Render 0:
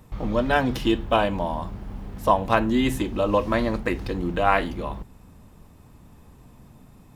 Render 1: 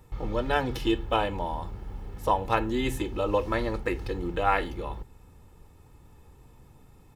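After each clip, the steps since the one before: comb 2.3 ms, depth 51%; gain -5 dB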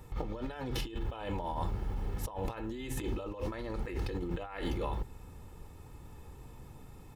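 negative-ratio compressor -35 dBFS, ratio -1; gain -2 dB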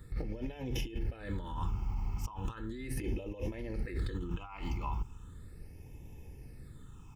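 phaser stages 8, 0.37 Hz, lowest notch 490–1300 Hz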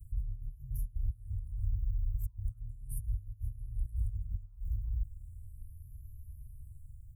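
inverse Chebyshev band-stop 270–4700 Hz, stop band 50 dB; gain +2.5 dB

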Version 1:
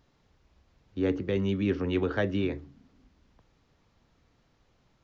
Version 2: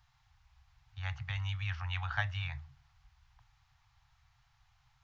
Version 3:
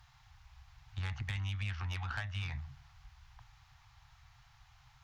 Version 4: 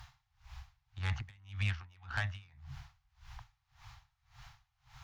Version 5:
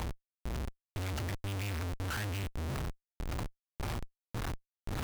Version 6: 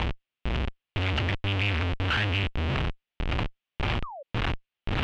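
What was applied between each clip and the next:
Chebyshev band-stop 130–770 Hz, order 4
compressor 12:1, threshold -41 dBFS, peak gain reduction 14.5 dB; tube stage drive 39 dB, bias 0.45; gain +9.5 dB
compressor 2:1, threshold -41 dBFS, peak gain reduction 4.5 dB; dB-linear tremolo 1.8 Hz, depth 30 dB; gain +9.5 dB
limiter -34.5 dBFS, peak gain reduction 11 dB; Schmitt trigger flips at -56 dBFS; gain +13 dB
painted sound fall, 4.03–4.23, 520–1300 Hz -49 dBFS; synth low-pass 2900 Hz, resonance Q 2.8; gain +8.5 dB

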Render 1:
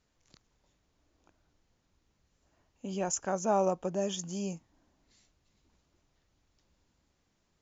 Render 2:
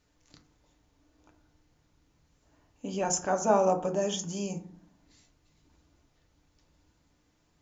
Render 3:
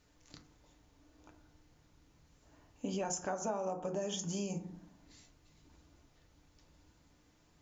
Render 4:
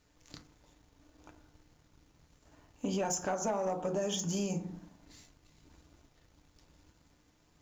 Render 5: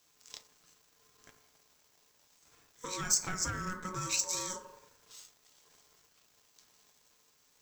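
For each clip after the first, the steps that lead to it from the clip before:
FDN reverb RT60 0.5 s, low-frequency decay 1.45×, high-frequency decay 0.45×, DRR 3.5 dB; gain +3 dB
compressor 8:1, threshold -36 dBFS, peak gain reduction 17.5 dB; gain +2 dB
sample leveller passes 1; gain +1 dB
RIAA curve recording; ring modulator 740 Hz

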